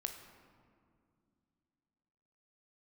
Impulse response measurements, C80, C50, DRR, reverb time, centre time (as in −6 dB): 9.0 dB, 7.5 dB, 5.0 dB, 2.3 s, 30 ms